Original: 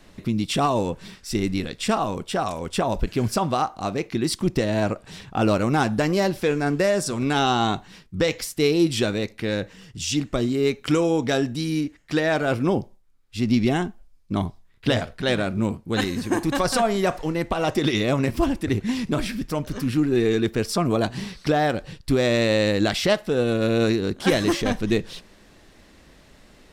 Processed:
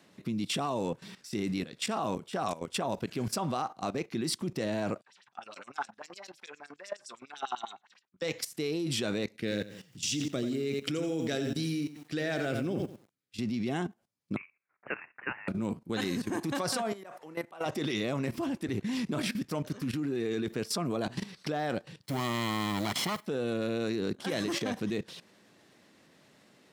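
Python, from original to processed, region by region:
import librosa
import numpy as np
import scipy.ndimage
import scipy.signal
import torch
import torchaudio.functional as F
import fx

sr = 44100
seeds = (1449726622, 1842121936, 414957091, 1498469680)

y = fx.chain(x, sr, fx.filter_lfo_bandpass(shape='sine', hz=9.8, low_hz=800.0, high_hz=7800.0, q=3.3),
    fx.notch_comb(f0_hz=160.0), at=(5.01, 8.22))
y = fx.chain(y, sr, fx.peak_eq(hz=960.0, db=-12.5, octaves=0.69),
    fx.echo_crushed(ms=86, feedback_pct=35, bits=8, wet_db=-8), at=(9.34, 13.39))
y = fx.chain(y, sr, fx.highpass(hz=920.0, slope=24),
    fx.high_shelf(hz=2200.0, db=-4.5),
    fx.freq_invert(carrier_hz=3300), at=(14.36, 15.48))
y = fx.chain(y, sr, fx.highpass(hz=710.0, slope=6),
    fx.peak_eq(hz=4700.0, db=-9.5, octaves=1.9),
    fx.auto_swell(attack_ms=100.0), at=(16.92, 17.66))
y = fx.chain(y, sr, fx.lower_of_two(delay_ms=0.95),
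    fx.mod_noise(seeds[0], snr_db=22), at=(22.03, 23.26))
y = scipy.signal.sosfilt(scipy.signal.butter(4, 120.0, 'highpass', fs=sr, output='sos'), y)
y = fx.level_steps(y, sr, step_db=15)
y = y * librosa.db_to_amplitude(-1.5)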